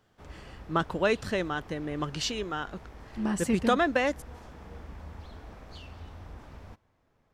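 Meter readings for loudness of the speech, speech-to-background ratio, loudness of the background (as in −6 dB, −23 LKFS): −29.0 LKFS, 19.0 dB, −48.0 LKFS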